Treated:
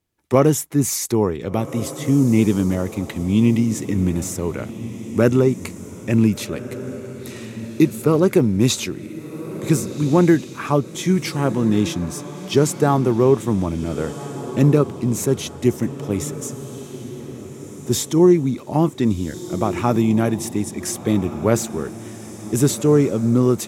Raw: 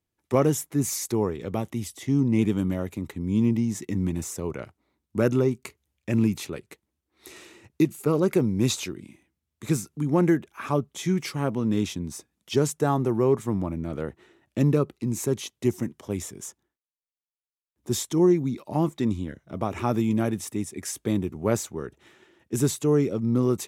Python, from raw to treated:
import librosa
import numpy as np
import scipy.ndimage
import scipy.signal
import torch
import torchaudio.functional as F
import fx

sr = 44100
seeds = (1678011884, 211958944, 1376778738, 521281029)

y = fx.peak_eq(x, sr, hz=3000.0, db=7.5, octaves=1.1, at=(2.96, 3.6))
y = fx.echo_diffused(y, sr, ms=1509, feedback_pct=42, wet_db=-13.0)
y = F.gain(torch.from_numpy(y), 6.5).numpy()